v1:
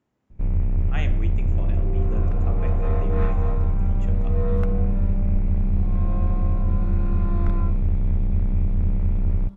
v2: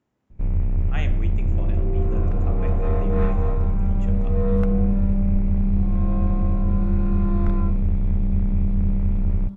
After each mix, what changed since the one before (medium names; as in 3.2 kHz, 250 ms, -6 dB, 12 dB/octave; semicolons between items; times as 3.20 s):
second sound: add bass shelf 290 Hz +11 dB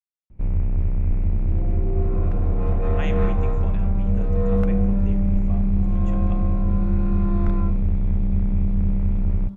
speech: entry +2.05 s